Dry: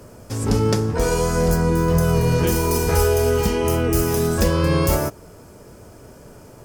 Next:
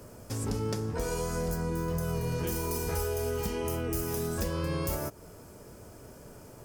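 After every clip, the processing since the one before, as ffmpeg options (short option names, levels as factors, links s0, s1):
-af "highshelf=f=9900:g=6,acompressor=threshold=0.0501:ratio=2.5,volume=0.501"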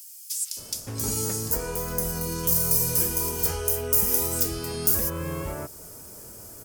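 -filter_complex "[0:a]crystalizer=i=4:c=0,acrossover=split=2700[s0][s1];[s0]adelay=570[s2];[s2][s1]amix=inputs=2:normalize=0"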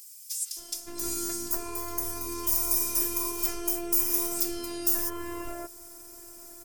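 -af "afftfilt=real='hypot(re,im)*cos(PI*b)':imag='0':win_size=512:overlap=0.75"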